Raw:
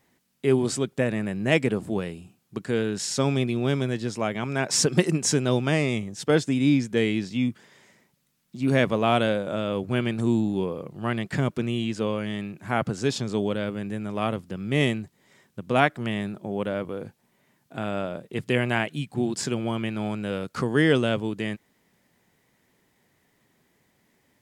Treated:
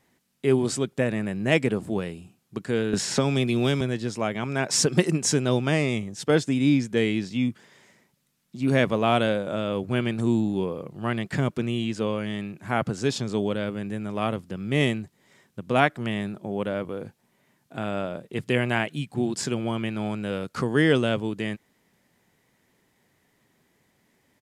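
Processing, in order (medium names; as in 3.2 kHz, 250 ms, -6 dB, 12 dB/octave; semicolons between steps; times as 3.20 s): resampled via 32 kHz; 2.93–3.81 s: three bands compressed up and down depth 100%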